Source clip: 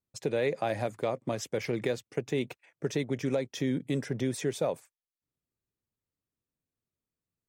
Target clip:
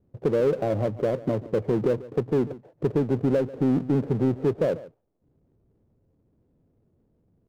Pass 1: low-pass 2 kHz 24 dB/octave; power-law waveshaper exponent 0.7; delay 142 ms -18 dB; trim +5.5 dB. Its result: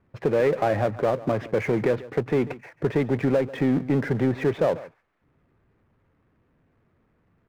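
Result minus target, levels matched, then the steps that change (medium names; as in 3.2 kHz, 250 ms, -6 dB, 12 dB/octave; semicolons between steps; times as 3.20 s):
2 kHz band +9.0 dB
change: low-pass 580 Hz 24 dB/octave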